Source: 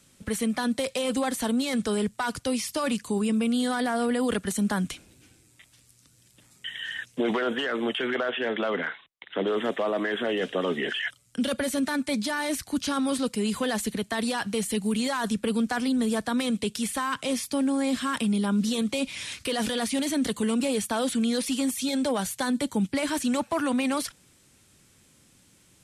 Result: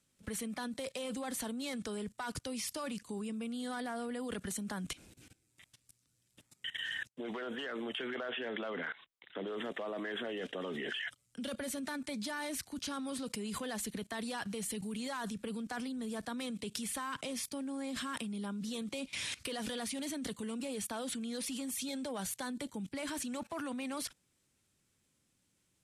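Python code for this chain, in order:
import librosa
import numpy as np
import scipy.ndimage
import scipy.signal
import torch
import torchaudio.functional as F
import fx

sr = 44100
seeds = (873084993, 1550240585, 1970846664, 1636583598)

y = fx.level_steps(x, sr, step_db=19)
y = fx.upward_expand(y, sr, threshold_db=-52.0, expansion=2.5, at=(7.07, 7.76))
y = F.gain(torch.from_numpy(y), -1.0).numpy()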